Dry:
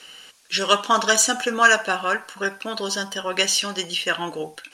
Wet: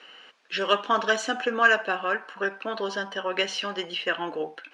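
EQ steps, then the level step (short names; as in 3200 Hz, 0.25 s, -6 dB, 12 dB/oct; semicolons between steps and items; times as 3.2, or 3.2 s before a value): dynamic EQ 1000 Hz, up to -5 dB, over -28 dBFS, Q 0.84; BPF 270–2300 Hz; 0.0 dB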